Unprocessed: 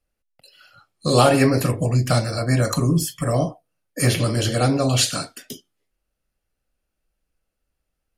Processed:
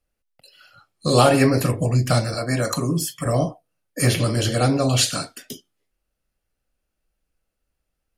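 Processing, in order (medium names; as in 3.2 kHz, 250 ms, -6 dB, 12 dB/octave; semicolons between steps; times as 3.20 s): 2.34–3.26 s: high-pass 210 Hz 6 dB/octave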